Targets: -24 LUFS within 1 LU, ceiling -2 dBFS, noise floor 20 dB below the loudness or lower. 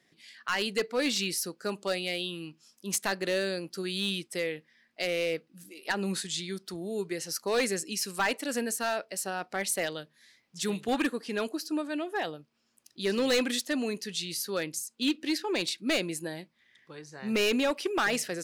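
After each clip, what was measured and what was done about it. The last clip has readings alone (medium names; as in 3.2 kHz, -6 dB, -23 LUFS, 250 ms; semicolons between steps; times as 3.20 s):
clipped samples 0.9%; clipping level -21.5 dBFS; loudness -31.0 LUFS; peak level -21.5 dBFS; loudness target -24.0 LUFS
-> clip repair -21.5 dBFS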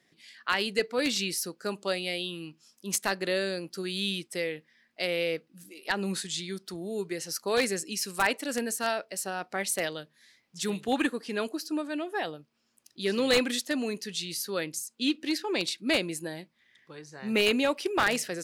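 clipped samples 0.0%; loudness -30.0 LUFS; peak level -12.5 dBFS; loudness target -24.0 LUFS
-> trim +6 dB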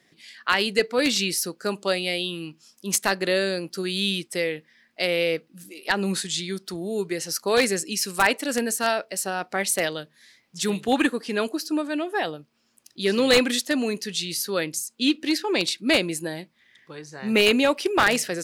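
loudness -24.0 LUFS; peak level -6.5 dBFS; noise floor -65 dBFS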